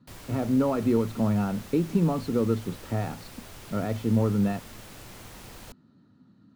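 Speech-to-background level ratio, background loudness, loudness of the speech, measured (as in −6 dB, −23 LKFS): 18.0 dB, −45.0 LKFS, −27.0 LKFS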